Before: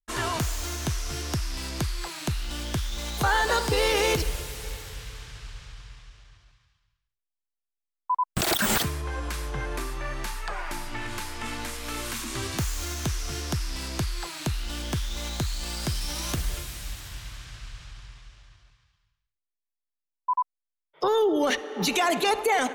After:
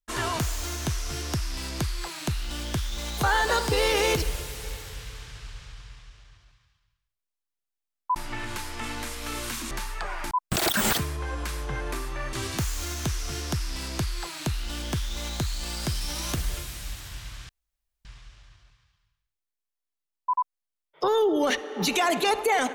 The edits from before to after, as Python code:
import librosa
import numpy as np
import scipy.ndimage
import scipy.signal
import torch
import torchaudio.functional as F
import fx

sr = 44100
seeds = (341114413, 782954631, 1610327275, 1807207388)

y = fx.edit(x, sr, fx.swap(start_s=8.16, length_s=2.02, other_s=10.78, other_length_s=1.55),
    fx.room_tone_fill(start_s=17.49, length_s=0.56), tone=tone)